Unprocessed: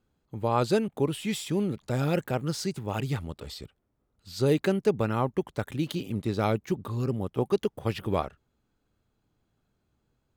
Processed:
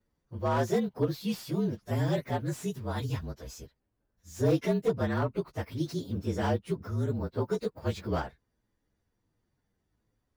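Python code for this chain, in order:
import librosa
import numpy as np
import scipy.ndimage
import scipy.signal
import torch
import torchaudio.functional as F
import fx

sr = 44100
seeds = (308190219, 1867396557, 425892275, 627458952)

y = fx.partial_stretch(x, sr, pct=113)
y = fx.slew_limit(y, sr, full_power_hz=48.0)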